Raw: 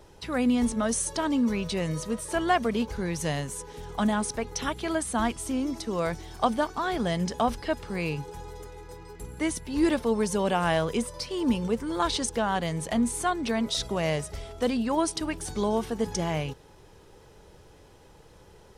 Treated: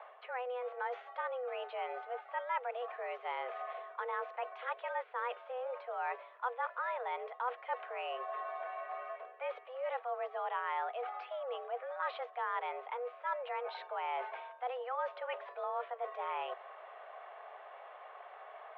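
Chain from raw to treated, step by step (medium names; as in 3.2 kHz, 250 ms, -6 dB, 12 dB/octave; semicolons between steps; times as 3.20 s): mistuned SSB +250 Hz 190–3100 Hz; reverse; compression 4:1, threshold -43 dBFS, peak gain reduction 20.5 dB; reverse; three-band isolator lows -18 dB, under 560 Hz, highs -20 dB, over 2.6 kHz; trim +7.5 dB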